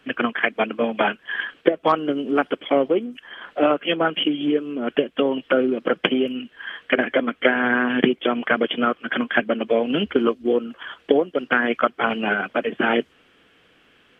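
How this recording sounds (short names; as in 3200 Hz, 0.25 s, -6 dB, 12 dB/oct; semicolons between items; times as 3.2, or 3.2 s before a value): noise floor -58 dBFS; spectral tilt -2.0 dB/oct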